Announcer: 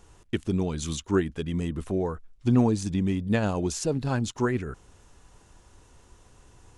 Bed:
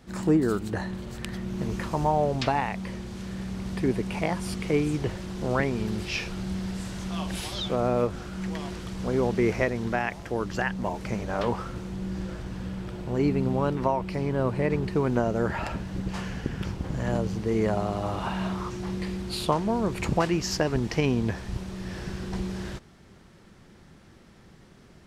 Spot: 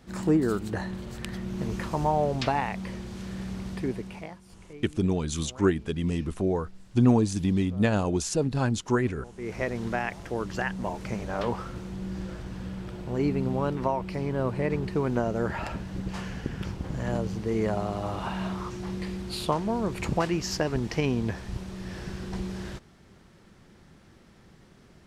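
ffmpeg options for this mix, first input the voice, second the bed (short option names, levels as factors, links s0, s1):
-filter_complex "[0:a]adelay=4500,volume=1.12[s0];[1:a]volume=8.41,afade=t=out:st=3.52:d=0.89:silence=0.0944061,afade=t=in:st=9.35:d=0.4:silence=0.105925[s1];[s0][s1]amix=inputs=2:normalize=0"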